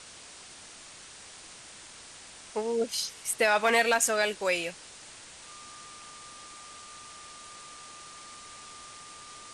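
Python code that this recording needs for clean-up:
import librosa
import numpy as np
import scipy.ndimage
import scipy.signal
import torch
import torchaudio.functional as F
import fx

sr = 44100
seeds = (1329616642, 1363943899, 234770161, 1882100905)

y = fx.fix_declip(x, sr, threshold_db=-13.5)
y = fx.notch(y, sr, hz=1200.0, q=30.0)
y = fx.noise_reduce(y, sr, print_start_s=0.72, print_end_s=1.22, reduce_db=26.0)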